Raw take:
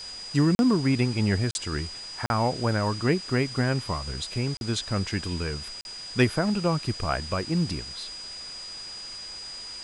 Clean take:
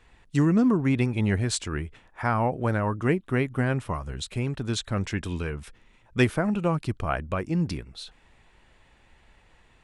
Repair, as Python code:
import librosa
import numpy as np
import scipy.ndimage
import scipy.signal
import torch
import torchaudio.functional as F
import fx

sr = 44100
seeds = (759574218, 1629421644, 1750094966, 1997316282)

y = fx.notch(x, sr, hz=4900.0, q=30.0)
y = fx.fix_interpolate(y, sr, at_s=(0.55, 1.51, 2.26, 4.57, 5.81), length_ms=41.0)
y = fx.noise_reduce(y, sr, print_start_s=8.16, print_end_s=8.66, reduce_db=19.0)